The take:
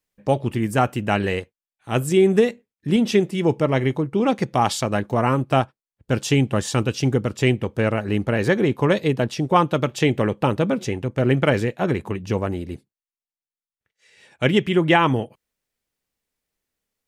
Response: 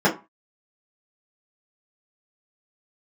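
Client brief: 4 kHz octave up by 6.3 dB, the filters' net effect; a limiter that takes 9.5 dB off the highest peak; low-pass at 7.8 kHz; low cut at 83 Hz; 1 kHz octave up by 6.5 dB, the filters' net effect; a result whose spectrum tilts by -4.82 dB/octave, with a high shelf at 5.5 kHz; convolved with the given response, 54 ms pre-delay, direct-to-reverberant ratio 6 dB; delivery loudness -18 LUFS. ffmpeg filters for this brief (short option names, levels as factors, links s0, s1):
-filter_complex "[0:a]highpass=83,lowpass=7800,equalizer=f=1000:t=o:g=8,equalizer=f=4000:t=o:g=7,highshelf=f=5500:g=4,alimiter=limit=0.473:level=0:latency=1,asplit=2[s0][s1];[1:a]atrim=start_sample=2205,adelay=54[s2];[s1][s2]afir=irnorm=-1:irlink=0,volume=0.0531[s3];[s0][s3]amix=inputs=2:normalize=0,volume=1.12"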